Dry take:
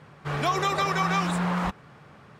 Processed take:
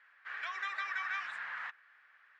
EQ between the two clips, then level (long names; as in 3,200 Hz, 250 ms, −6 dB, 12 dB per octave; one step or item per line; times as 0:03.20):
four-pole ladder band-pass 1,900 Hz, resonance 65%
0.0 dB